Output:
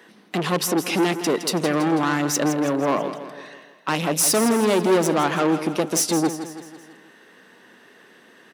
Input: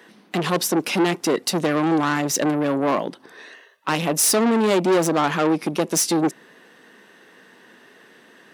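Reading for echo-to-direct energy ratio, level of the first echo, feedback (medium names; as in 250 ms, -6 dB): -9.5 dB, -11.0 dB, 51%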